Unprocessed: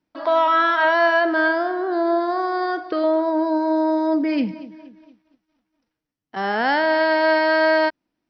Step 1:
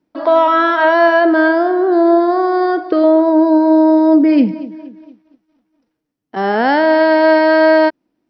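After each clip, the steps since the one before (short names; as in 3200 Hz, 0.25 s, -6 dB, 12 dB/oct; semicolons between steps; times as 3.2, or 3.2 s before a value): bell 340 Hz +9.5 dB 2.5 oct; gain +1.5 dB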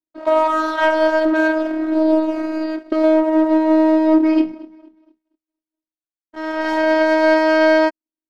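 power-law curve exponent 1.4; robotiser 315 Hz; gain -1.5 dB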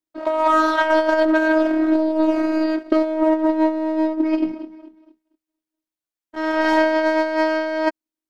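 negative-ratio compressor -17 dBFS, ratio -0.5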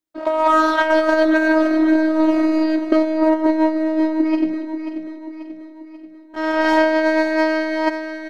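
feedback echo 0.537 s, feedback 51%, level -9.5 dB; gain +1.5 dB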